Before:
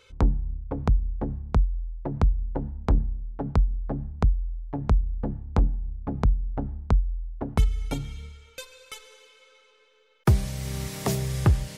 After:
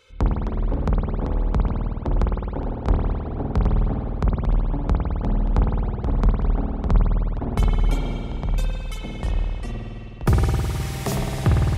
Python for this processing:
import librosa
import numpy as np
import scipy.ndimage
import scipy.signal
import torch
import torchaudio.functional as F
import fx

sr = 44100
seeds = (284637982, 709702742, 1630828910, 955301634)

y = fx.echo_pitch(x, sr, ms=223, semitones=-3, count=2, db_per_echo=-6.0)
y = fx.rev_spring(y, sr, rt60_s=2.6, pass_ms=(52,), chirp_ms=25, drr_db=-2.5)